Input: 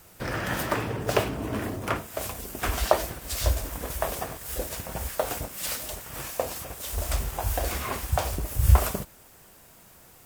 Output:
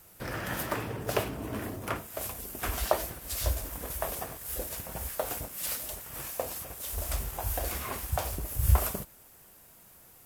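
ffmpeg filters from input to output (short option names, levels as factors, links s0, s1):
-af "equalizer=f=12000:w=1.6:g=8,volume=0.531"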